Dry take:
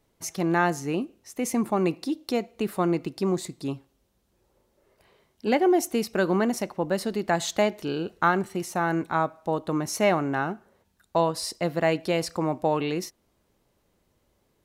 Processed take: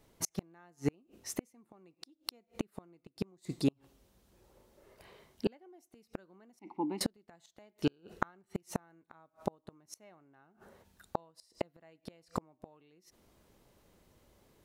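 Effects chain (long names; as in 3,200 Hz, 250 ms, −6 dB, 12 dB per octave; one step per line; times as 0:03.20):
0:06.59–0:07.01: formant filter u
gate with flip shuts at −21 dBFS, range −40 dB
level +3.5 dB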